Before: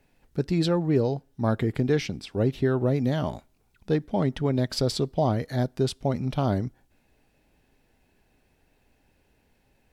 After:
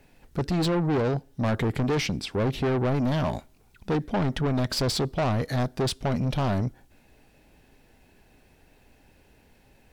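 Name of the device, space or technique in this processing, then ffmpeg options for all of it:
saturation between pre-emphasis and de-emphasis: -af "highshelf=f=8.2k:g=8,asoftclip=type=tanh:threshold=-29dB,highshelf=f=8.2k:g=-8,volume=7.5dB"

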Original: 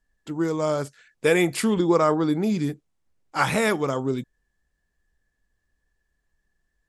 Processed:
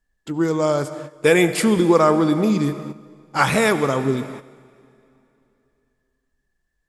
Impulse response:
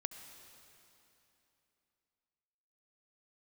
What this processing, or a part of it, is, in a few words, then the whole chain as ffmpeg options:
keyed gated reverb: -filter_complex "[0:a]asplit=3[a][b][c];[1:a]atrim=start_sample=2205[d];[b][d]afir=irnorm=-1:irlink=0[e];[c]apad=whole_len=303782[f];[e][f]sidechaingate=range=-10dB:threshold=-52dB:ratio=16:detection=peak,volume=7.5dB[g];[a][g]amix=inputs=2:normalize=0,volume=-4.5dB"

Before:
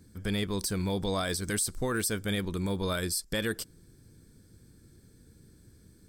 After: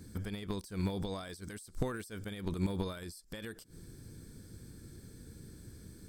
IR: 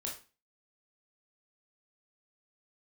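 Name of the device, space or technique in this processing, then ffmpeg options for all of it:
de-esser from a sidechain: -filter_complex "[0:a]asplit=2[a][b];[b]highpass=f=6k:p=1,apad=whole_len=268225[c];[a][c]sidechaincompress=threshold=-53dB:ratio=20:attack=0.62:release=87,volume=5.5dB"

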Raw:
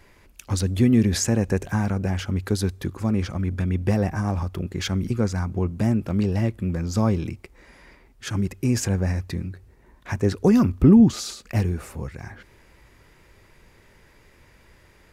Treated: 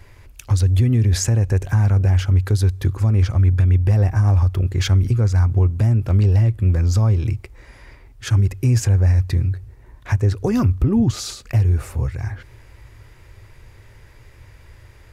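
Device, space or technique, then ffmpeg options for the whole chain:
car stereo with a boomy subwoofer: -af "lowshelf=f=140:t=q:w=3:g=6.5,alimiter=limit=-12.5dB:level=0:latency=1:release=208,volume=3.5dB"

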